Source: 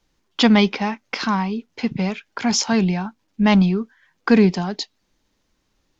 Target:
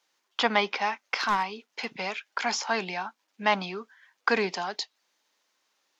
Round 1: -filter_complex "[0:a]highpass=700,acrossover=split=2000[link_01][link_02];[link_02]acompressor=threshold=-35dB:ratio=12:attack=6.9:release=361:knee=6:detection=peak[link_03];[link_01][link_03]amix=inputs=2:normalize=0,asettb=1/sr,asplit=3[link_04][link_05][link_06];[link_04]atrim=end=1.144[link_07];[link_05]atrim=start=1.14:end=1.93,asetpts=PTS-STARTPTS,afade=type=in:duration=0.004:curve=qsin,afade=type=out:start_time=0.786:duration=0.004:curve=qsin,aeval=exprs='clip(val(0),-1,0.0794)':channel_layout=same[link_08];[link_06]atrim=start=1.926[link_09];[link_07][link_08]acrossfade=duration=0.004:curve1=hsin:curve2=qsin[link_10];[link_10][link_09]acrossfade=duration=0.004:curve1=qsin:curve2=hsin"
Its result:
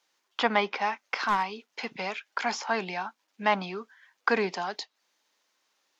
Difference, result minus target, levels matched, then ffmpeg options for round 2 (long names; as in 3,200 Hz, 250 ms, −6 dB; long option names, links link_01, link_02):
downward compressor: peak gain reduction +6.5 dB
-filter_complex "[0:a]highpass=700,acrossover=split=2000[link_01][link_02];[link_02]acompressor=threshold=-28dB:ratio=12:attack=6.9:release=361:knee=6:detection=peak[link_03];[link_01][link_03]amix=inputs=2:normalize=0,asettb=1/sr,asplit=3[link_04][link_05][link_06];[link_04]atrim=end=1.144[link_07];[link_05]atrim=start=1.14:end=1.93,asetpts=PTS-STARTPTS,afade=type=in:duration=0.004:curve=qsin,afade=type=out:start_time=0.786:duration=0.004:curve=qsin,aeval=exprs='clip(val(0),-1,0.0794)':channel_layout=same[link_08];[link_06]atrim=start=1.926[link_09];[link_07][link_08]acrossfade=duration=0.004:curve1=hsin:curve2=qsin[link_10];[link_10][link_09]acrossfade=duration=0.004:curve1=qsin:curve2=hsin"